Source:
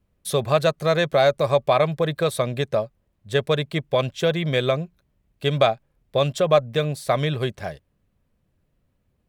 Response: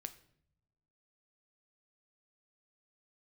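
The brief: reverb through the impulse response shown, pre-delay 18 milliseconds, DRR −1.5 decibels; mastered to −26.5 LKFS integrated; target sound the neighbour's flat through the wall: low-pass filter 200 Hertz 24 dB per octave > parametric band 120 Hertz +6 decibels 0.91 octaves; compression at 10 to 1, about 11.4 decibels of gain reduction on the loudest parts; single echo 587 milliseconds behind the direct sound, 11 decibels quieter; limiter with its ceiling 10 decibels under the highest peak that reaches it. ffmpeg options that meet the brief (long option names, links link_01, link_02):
-filter_complex "[0:a]acompressor=threshold=-24dB:ratio=10,alimiter=limit=-23.5dB:level=0:latency=1,aecho=1:1:587:0.282,asplit=2[link_01][link_02];[1:a]atrim=start_sample=2205,adelay=18[link_03];[link_02][link_03]afir=irnorm=-1:irlink=0,volume=5.5dB[link_04];[link_01][link_04]amix=inputs=2:normalize=0,lowpass=frequency=200:width=0.5412,lowpass=frequency=200:width=1.3066,equalizer=frequency=120:width_type=o:width=0.91:gain=6,volume=4.5dB"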